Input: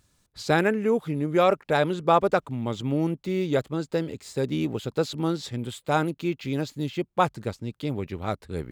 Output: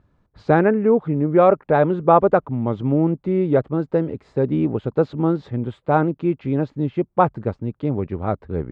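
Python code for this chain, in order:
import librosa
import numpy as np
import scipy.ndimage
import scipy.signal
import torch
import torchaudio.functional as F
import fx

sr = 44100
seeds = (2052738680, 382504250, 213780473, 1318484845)

y = scipy.signal.sosfilt(scipy.signal.butter(2, 1200.0, 'lowpass', fs=sr, output='sos'), x)
y = F.gain(torch.from_numpy(y), 7.0).numpy()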